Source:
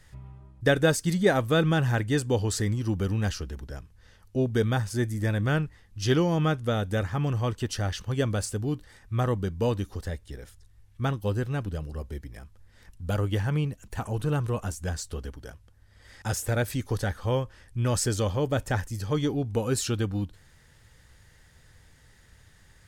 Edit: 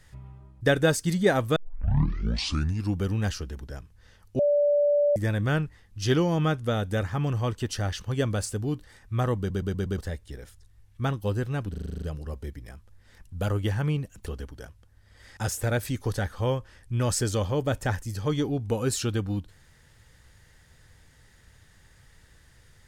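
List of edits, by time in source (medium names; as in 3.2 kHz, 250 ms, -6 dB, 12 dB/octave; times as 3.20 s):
1.56 s: tape start 1.43 s
4.39–5.16 s: bleep 582 Hz -18.5 dBFS
9.38 s: stutter in place 0.12 s, 5 plays
11.70 s: stutter 0.04 s, 9 plays
13.94–15.11 s: delete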